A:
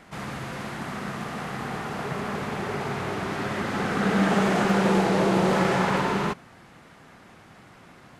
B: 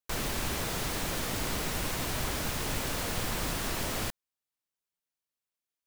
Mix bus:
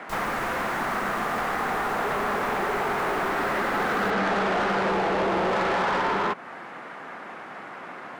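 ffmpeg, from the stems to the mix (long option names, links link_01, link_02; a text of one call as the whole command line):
ffmpeg -i stem1.wav -i stem2.wav -filter_complex "[0:a]acrossover=split=170 2200:gain=0.2 1 0.178[link_01][link_02][link_03];[link_01][link_02][link_03]amix=inputs=3:normalize=0,asplit=2[link_04][link_05];[link_05]highpass=frequency=720:poles=1,volume=20dB,asoftclip=type=tanh:threshold=-11dB[link_06];[link_04][link_06]amix=inputs=2:normalize=0,lowpass=frequency=7000:poles=1,volume=-6dB,volume=1.5dB[link_07];[1:a]volume=-5.5dB[link_08];[link_07][link_08]amix=inputs=2:normalize=0,acompressor=threshold=-26dB:ratio=2.5" out.wav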